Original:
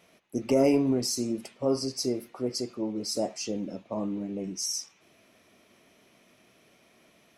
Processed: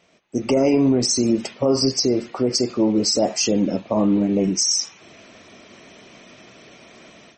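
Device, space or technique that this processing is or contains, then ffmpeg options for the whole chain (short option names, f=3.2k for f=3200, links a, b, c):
low-bitrate web radio: -af "dynaudnorm=f=270:g=3:m=13.5dB,alimiter=limit=-11dB:level=0:latency=1:release=76,volume=2dB" -ar 48000 -c:a libmp3lame -b:a 32k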